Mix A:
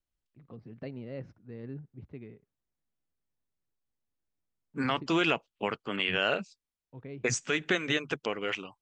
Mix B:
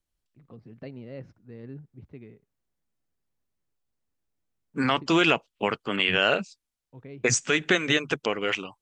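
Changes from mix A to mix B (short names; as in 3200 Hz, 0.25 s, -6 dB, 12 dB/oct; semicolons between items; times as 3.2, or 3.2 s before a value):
second voice +5.5 dB; master: add high shelf 8000 Hz +7 dB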